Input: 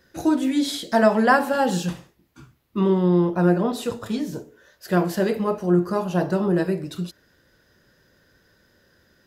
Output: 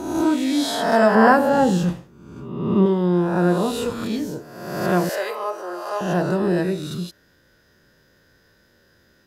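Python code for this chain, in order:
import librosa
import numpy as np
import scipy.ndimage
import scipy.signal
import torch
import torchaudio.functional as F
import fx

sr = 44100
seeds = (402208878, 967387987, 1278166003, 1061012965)

y = fx.spec_swells(x, sr, rise_s=1.12)
y = fx.tilt_shelf(y, sr, db=5.0, hz=1100.0, at=(1.15, 2.86))
y = fx.highpass(y, sr, hz=530.0, slope=24, at=(5.09, 6.01))
y = y * 10.0 ** (-1.0 / 20.0)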